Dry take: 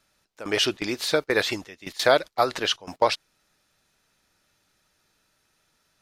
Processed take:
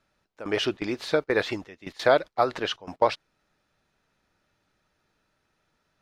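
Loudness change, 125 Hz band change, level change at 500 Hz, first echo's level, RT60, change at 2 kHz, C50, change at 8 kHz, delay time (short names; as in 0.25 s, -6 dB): -2.0 dB, 0.0 dB, -0.5 dB, none, none, -3.0 dB, none, -11.5 dB, none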